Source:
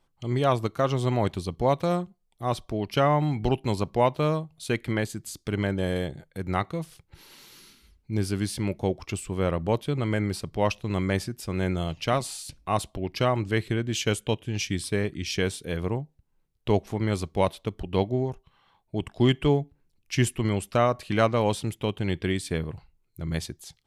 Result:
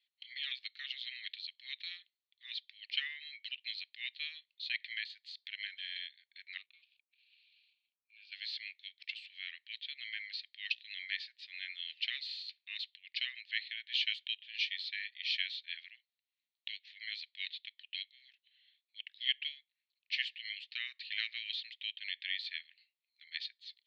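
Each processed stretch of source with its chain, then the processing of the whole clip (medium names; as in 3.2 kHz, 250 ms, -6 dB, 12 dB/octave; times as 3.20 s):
6.57–8.32 s: waveshaping leveller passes 2 + vowel filter a
whole clip: Chebyshev band-pass 1.8–4.3 kHz, order 4; differentiator; trim +8 dB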